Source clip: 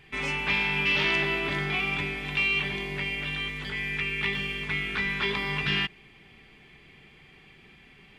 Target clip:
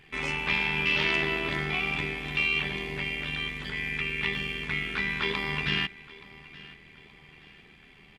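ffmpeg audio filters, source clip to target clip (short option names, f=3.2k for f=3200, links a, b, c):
-filter_complex "[0:a]tremolo=f=78:d=0.571,asplit=2[a][b];[b]aecho=0:1:874|1748|2622:0.1|0.041|0.0168[c];[a][c]amix=inputs=2:normalize=0,volume=1.5dB"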